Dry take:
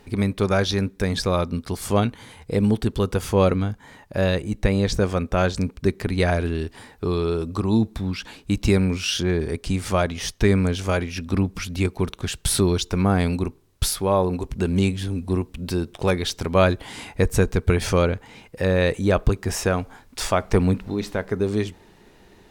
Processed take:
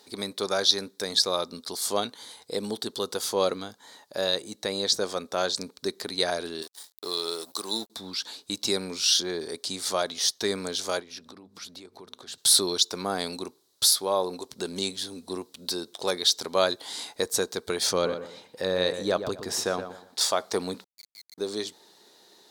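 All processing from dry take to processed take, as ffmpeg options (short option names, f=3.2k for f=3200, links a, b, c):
-filter_complex "[0:a]asettb=1/sr,asplit=3[a][b][c];[a]atrim=end=6.624[d];[b]atrim=start=6.62:end=7.9,asetpts=PTS-STARTPTS,afade=t=in:d=0.004:c=qsin,afade=t=out:st=1.276:d=0.004:c=qsin,aemphasis=mode=production:type=bsi,aeval=exprs='sgn(val(0))*max(abs(val(0))-0.01,0)':c=same[e];[c]atrim=start=7.896[f];[d][e]acrossfade=d=0.004:c1=hsin:c2=qsin[g];[g][f]acrossfade=d=0.004:c1=qsin:c2=hsin,asettb=1/sr,asplit=3[h][i][j];[h]atrim=end=11.004[k];[i]atrim=start=11:end=12.38,asetpts=PTS-STARTPTS,afade=t=in:d=0.004:c=qsin,afade=t=out:st=1.376:d=0.004:c=qsin,highshelf=f=3.2k:g=-11,bandreject=f=50:t=h:w=6,bandreject=f=100:t=h:w=6,bandreject=f=150:t=h:w=6,bandreject=f=200:t=h:w=6,bandreject=f=250:t=h:w=6,acompressor=threshold=-32dB:ratio=8:attack=3.2:release=140:knee=1:detection=peak[l];[j]atrim=start=12.376[m];[k][l]acrossfade=d=0.004:c1=hsin:c2=qsin[n];[n][m]acrossfade=d=0.004:c1=qsin:c2=hsin,asettb=1/sr,asplit=3[o][p][q];[o]atrim=end=17.914[r];[p]atrim=start=17.91:end=20.21,asetpts=PTS-STARTPTS,afade=t=in:d=0.004:c=qsin,afade=t=out:st=2.296:d=0.004:c=qsin,bass=f=250:g=6,treble=f=4k:g=-6,asplit=2[s][t];[t]adelay=120,lowpass=f=2.1k:p=1,volume=-9dB,asplit=2[u][v];[v]adelay=120,lowpass=f=2.1k:p=1,volume=0.3,asplit=2[w][x];[x]adelay=120,lowpass=f=2.1k:p=1,volume=0.3[y];[s][u][w][y]amix=inputs=4:normalize=0,atrim=end_sample=101430[z];[q]atrim=start=20.206[aa];[r][z]acrossfade=d=0.004:c1=hsin:c2=qsin[ab];[ab][aa]acrossfade=d=0.004:c1=qsin:c2=hsin,asettb=1/sr,asplit=3[ac][ad][ae];[ac]atrim=end=20.844[af];[ad]atrim=start=20.84:end=21.38,asetpts=PTS-STARTPTS,afade=t=in:d=0.004:c=qsin,afade=t=out:st=0.536:d=0.004:c=qsin,asuperpass=centerf=2200:order=8:qfactor=7.1,acrusher=bits=5:dc=4:mix=0:aa=0.000001[ag];[ae]atrim=start=21.376[ah];[af][ag]acrossfade=d=0.004:c1=hsin:c2=qsin[ai];[ai][ah]acrossfade=d=0.004:c1=qsin:c2=hsin,highpass=400,highshelf=f=3.2k:t=q:w=3:g=7,volume=-4dB"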